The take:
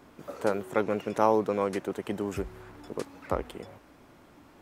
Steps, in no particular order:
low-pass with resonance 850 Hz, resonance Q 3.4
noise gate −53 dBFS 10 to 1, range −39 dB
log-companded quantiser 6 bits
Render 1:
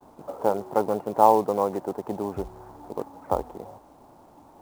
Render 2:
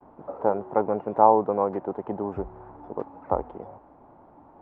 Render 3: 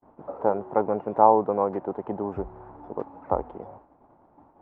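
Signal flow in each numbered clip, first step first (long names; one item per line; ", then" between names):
low-pass with resonance, then log-companded quantiser, then noise gate
log-companded quantiser, then low-pass with resonance, then noise gate
log-companded quantiser, then noise gate, then low-pass with resonance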